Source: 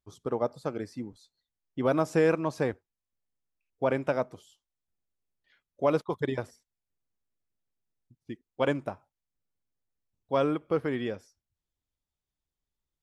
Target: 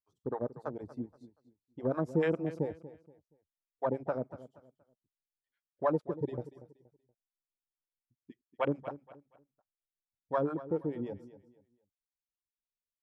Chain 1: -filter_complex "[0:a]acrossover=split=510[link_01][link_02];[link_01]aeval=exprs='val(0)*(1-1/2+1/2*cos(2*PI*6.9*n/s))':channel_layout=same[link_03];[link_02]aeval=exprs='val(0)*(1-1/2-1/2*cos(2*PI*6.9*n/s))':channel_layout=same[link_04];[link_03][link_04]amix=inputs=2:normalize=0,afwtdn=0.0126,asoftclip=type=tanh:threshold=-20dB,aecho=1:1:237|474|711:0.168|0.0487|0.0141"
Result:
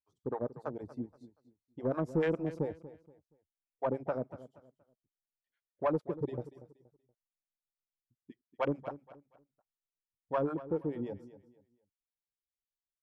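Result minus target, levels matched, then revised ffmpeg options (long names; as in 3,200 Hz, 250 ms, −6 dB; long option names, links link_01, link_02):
soft clipping: distortion +21 dB
-filter_complex "[0:a]acrossover=split=510[link_01][link_02];[link_01]aeval=exprs='val(0)*(1-1/2+1/2*cos(2*PI*6.9*n/s))':channel_layout=same[link_03];[link_02]aeval=exprs='val(0)*(1-1/2-1/2*cos(2*PI*6.9*n/s))':channel_layout=same[link_04];[link_03][link_04]amix=inputs=2:normalize=0,afwtdn=0.0126,asoftclip=type=tanh:threshold=-8.5dB,aecho=1:1:237|474|711:0.168|0.0487|0.0141"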